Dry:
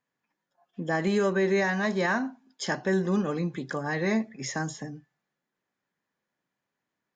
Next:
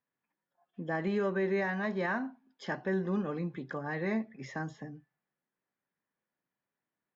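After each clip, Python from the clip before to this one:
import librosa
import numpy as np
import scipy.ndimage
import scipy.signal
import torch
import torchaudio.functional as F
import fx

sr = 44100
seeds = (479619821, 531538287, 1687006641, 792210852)

y = scipy.signal.sosfilt(scipy.signal.butter(2, 2900.0, 'lowpass', fs=sr, output='sos'), x)
y = y * librosa.db_to_amplitude(-6.0)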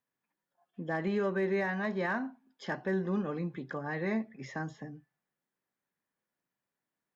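y = np.clip(x, -10.0 ** (-23.5 / 20.0), 10.0 ** (-23.5 / 20.0))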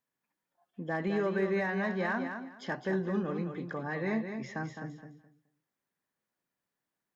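y = fx.echo_feedback(x, sr, ms=211, feedback_pct=21, wet_db=-7.5)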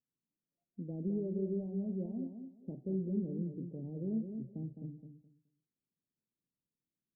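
y = scipy.ndimage.gaussian_filter1d(x, 23.0, mode='constant')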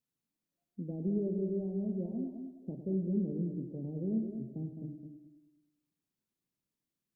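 y = fx.echo_feedback(x, sr, ms=104, feedback_pct=57, wet_db=-10)
y = y * librosa.db_to_amplitude(2.5)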